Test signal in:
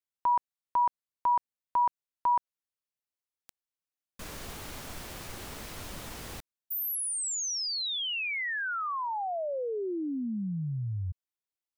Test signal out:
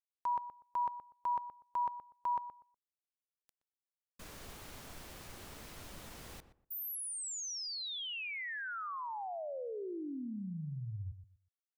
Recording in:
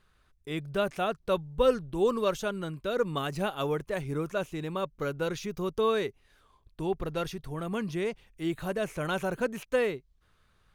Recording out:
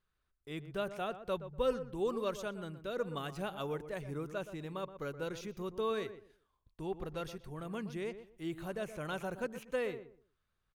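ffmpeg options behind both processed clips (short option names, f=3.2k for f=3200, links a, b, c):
-filter_complex "[0:a]agate=range=-8dB:threshold=-56dB:ratio=16:release=331:detection=peak,asplit=2[a][b];[b]adelay=122,lowpass=f=1.4k:p=1,volume=-11dB,asplit=2[c][d];[d]adelay=122,lowpass=f=1.4k:p=1,volume=0.23,asplit=2[e][f];[f]adelay=122,lowpass=f=1.4k:p=1,volume=0.23[g];[c][e][g]amix=inputs=3:normalize=0[h];[a][h]amix=inputs=2:normalize=0,volume=-8.5dB"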